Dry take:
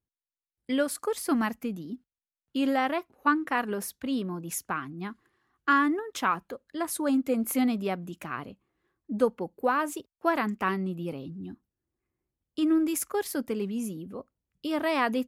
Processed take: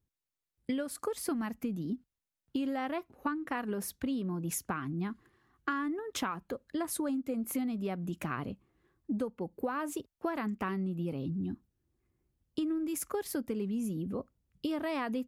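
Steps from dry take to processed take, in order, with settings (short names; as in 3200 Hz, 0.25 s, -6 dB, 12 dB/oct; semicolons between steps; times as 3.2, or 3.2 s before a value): low shelf 280 Hz +9 dB; compressor 10:1, threshold -32 dBFS, peak gain reduction 17 dB; gain +1 dB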